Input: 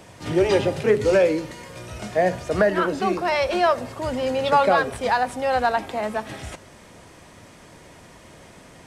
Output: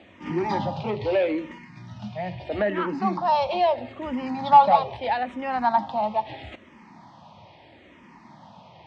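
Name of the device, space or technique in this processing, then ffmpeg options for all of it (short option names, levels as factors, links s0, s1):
barber-pole phaser into a guitar amplifier: -filter_complex "[0:a]asplit=2[s0][s1];[s1]afreqshift=-0.77[s2];[s0][s2]amix=inputs=2:normalize=1,asoftclip=type=tanh:threshold=0.211,highpass=98,equalizer=f=220:t=q:w=4:g=5,equalizer=f=450:t=q:w=4:g=-10,equalizer=f=870:t=q:w=4:g=10,equalizer=f=1500:t=q:w=4:g=-8,lowpass=f=4200:w=0.5412,lowpass=f=4200:w=1.3066,asettb=1/sr,asplit=3[s3][s4][s5];[s3]atrim=end=1.584[s6];[s4]atrim=start=1.58:end=2.4,asetpts=PTS-STARTPTS,afade=t=in:d=0.004:c=qsin,afade=t=out:st=0.816:d=0.004:c=qsin,equalizer=f=125:t=o:w=1:g=4,equalizer=f=500:t=o:w=1:g=-12,equalizer=f=1000:t=o:w=1:g=-9,equalizer=f=2000:t=o:w=1:g=3,equalizer=f=4000:t=o:w=1:g=-3,equalizer=f=8000:t=o:w=1:g=-3[s7];[s5]atrim=start=2.396[s8];[s6][s7]acrossfade=d=0.004:c1=hsin:c2=qsin[s9];[s9][s8]acrossfade=d=0.004:c1=qsin:c2=hsin"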